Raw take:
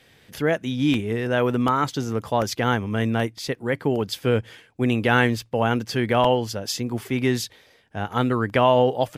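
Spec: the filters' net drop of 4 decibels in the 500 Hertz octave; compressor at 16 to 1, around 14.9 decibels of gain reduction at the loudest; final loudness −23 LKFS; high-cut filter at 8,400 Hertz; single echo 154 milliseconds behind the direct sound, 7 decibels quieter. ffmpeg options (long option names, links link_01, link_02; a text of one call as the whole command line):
ffmpeg -i in.wav -af "lowpass=8400,equalizer=frequency=500:width_type=o:gain=-5,acompressor=threshold=-30dB:ratio=16,aecho=1:1:154:0.447,volume=11.5dB" out.wav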